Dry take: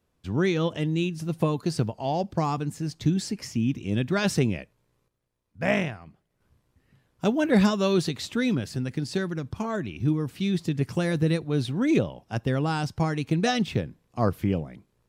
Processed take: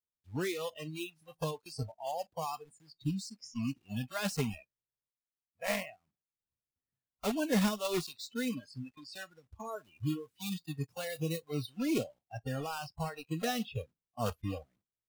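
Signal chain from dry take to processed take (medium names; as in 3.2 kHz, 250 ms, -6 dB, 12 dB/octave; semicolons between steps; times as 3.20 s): block-companded coder 3-bit; spectral noise reduction 25 dB; 9.65–11.67 s: treble shelf 6.9 kHz +6 dB; trim -9 dB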